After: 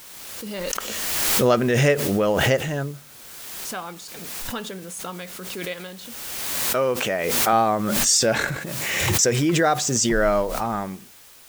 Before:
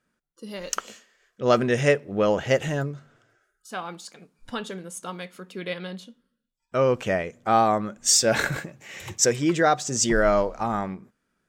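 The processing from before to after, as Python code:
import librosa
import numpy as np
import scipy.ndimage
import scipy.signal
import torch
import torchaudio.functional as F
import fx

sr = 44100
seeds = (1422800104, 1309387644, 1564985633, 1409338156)

y = fx.highpass(x, sr, hz=300.0, slope=6, at=(5.47, 7.53))
y = fx.quant_dither(y, sr, seeds[0], bits=8, dither='triangular')
y = fx.pre_swell(y, sr, db_per_s=25.0)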